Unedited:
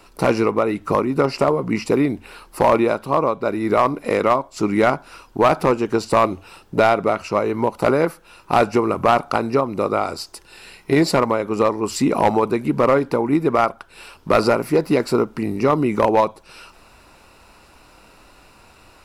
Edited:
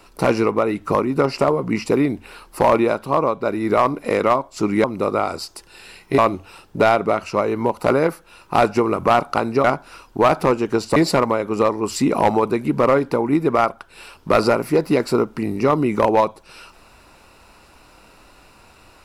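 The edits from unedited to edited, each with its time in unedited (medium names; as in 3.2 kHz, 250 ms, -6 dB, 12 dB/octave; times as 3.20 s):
4.84–6.16 s: swap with 9.62–10.96 s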